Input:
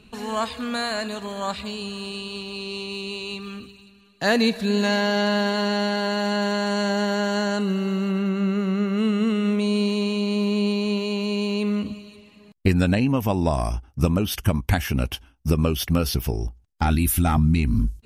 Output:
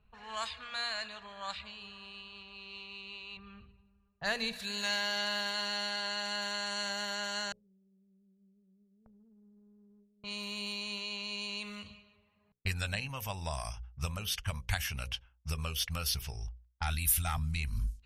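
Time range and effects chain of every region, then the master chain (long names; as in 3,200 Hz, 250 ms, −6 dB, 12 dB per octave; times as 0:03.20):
0:03.37–0:04.53: spectral tilt −2.5 dB per octave + one half of a high-frequency compander decoder only
0:07.52–0:10.24: inverse Chebyshev low-pass filter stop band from 2,300 Hz, stop band 80 dB + noise gate with hold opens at −16 dBFS, closes at −22 dBFS + downward compressor, threshold −37 dBFS
whole clip: low-pass that shuts in the quiet parts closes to 890 Hz, open at −18 dBFS; guitar amp tone stack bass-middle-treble 10-0-10; mains-hum notches 60/120/180/240/300/360/420/480/540 Hz; level −2.5 dB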